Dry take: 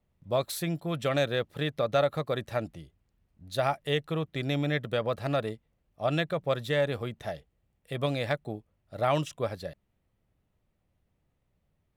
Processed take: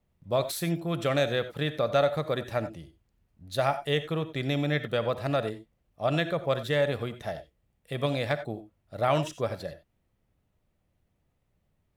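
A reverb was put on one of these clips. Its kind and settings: gated-style reverb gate 110 ms rising, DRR 11.5 dB; trim +1 dB

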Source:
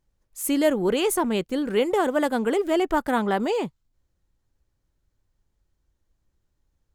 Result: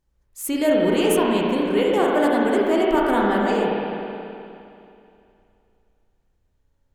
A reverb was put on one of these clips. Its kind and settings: spring tank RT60 2.7 s, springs 34/52 ms, chirp 55 ms, DRR -3.5 dB; trim -1 dB

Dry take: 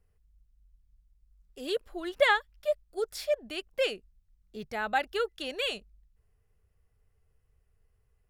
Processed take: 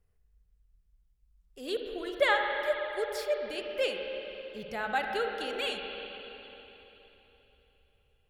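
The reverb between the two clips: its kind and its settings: spring tank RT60 3.6 s, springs 47/53/59 ms, chirp 20 ms, DRR 2 dB; trim -2.5 dB

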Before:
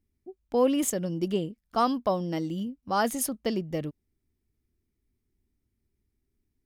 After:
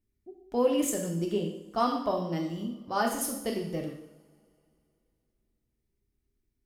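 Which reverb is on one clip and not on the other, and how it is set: two-slope reverb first 0.73 s, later 2.8 s, from -24 dB, DRR 0.5 dB; trim -4.5 dB

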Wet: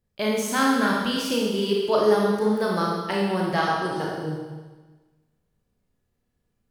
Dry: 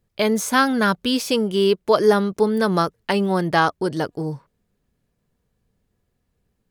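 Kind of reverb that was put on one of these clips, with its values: Schroeder reverb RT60 1.3 s, combs from 26 ms, DRR -3 dB; trim -8 dB

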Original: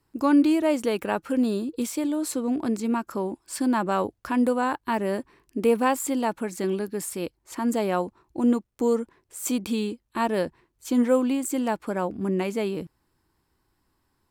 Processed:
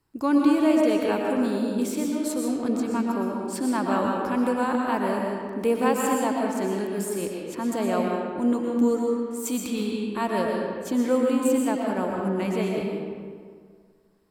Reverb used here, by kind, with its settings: algorithmic reverb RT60 1.9 s, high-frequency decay 0.6×, pre-delay 80 ms, DRR -1 dB; trim -2.5 dB

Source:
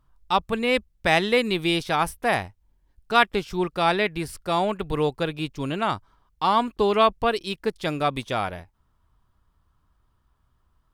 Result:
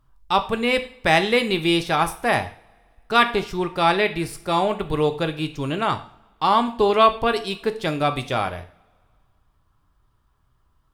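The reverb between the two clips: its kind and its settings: two-slope reverb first 0.45 s, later 2.1 s, from -26 dB, DRR 7.5 dB; trim +2 dB

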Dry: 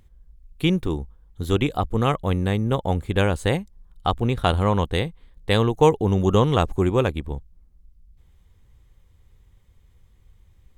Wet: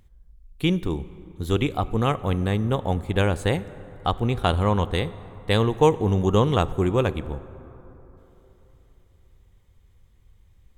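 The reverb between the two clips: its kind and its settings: plate-style reverb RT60 3.7 s, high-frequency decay 0.4×, DRR 15.5 dB; trim -1.5 dB

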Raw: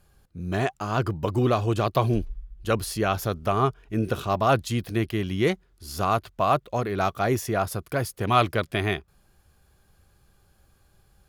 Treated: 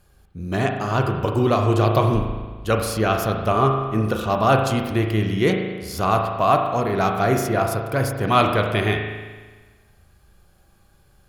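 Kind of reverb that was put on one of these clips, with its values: spring tank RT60 1.4 s, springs 37 ms, chirp 70 ms, DRR 3 dB; trim +3 dB

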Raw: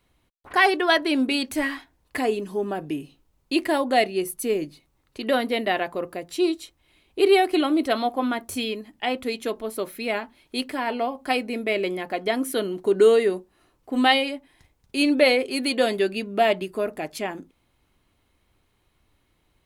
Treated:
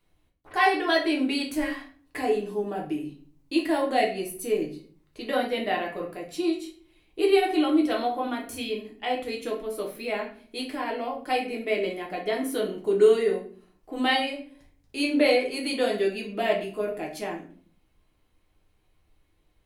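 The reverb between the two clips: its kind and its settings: simulated room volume 42 m³, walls mixed, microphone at 0.7 m; trim -7.5 dB

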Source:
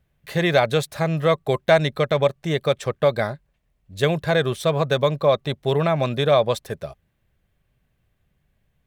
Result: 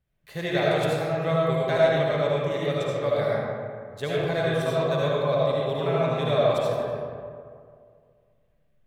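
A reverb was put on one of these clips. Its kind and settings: algorithmic reverb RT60 2.2 s, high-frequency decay 0.45×, pre-delay 35 ms, DRR -6.5 dB; trim -11.5 dB

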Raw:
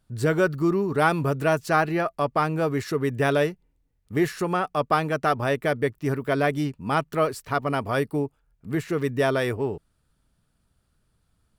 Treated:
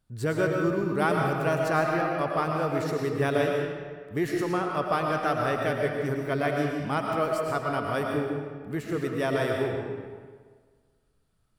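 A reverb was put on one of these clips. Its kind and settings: algorithmic reverb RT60 1.6 s, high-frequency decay 0.75×, pre-delay 70 ms, DRR 0.5 dB; trim -5.5 dB

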